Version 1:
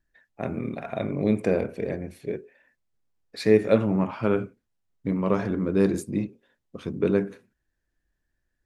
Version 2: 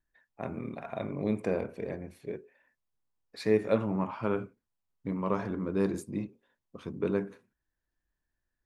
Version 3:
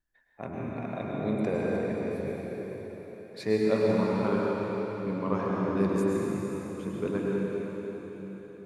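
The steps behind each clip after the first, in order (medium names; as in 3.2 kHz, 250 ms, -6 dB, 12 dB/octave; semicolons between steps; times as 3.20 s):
peaking EQ 1 kHz +6.5 dB 0.67 oct; trim -7.5 dB
reverberation RT60 4.6 s, pre-delay 92 ms, DRR -4 dB; trim -1.5 dB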